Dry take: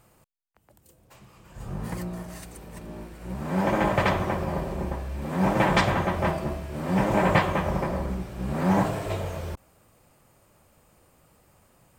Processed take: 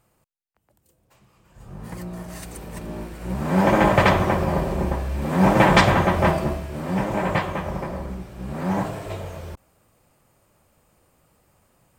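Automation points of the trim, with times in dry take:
1.68 s -6 dB
2.53 s +6.5 dB
6.39 s +6.5 dB
7.12 s -2 dB

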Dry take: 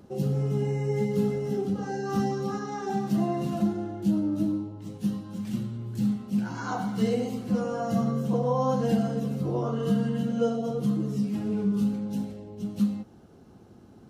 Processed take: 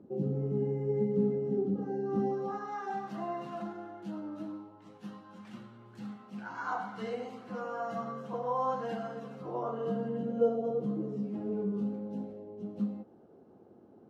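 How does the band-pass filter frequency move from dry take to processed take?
band-pass filter, Q 1.2
2.10 s 310 Hz
2.75 s 1.2 kHz
9.35 s 1.2 kHz
10.20 s 490 Hz

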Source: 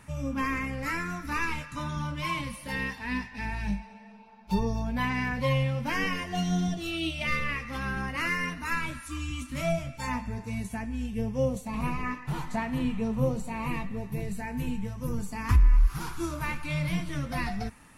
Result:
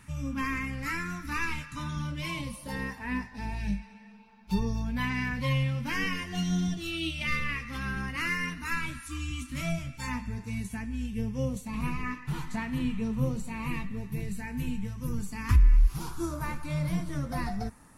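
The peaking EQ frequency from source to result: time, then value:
peaking EQ -10.5 dB 1.1 oct
1.88 s 610 Hz
3.12 s 4.5 kHz
3.87 s 650 Hz
15.52 s 650 Hz
16.26 s 2.7 kHz

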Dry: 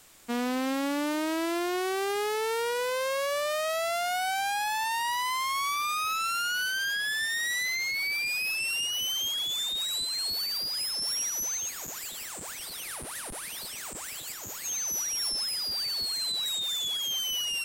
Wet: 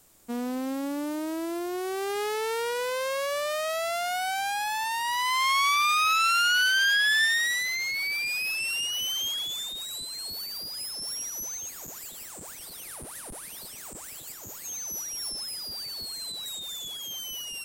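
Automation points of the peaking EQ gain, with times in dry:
peaking EQ 2.5 kHz 2.9 oct
1.69 s -10 dB
2.22 s 0 dB
5.01 s 0 dB
5.48 s +8.5 dB
7.24 s +8.5 dB
7.65 s +0.5 dB
9.31 s +0.5 dB
9.86 s -7.5 dB

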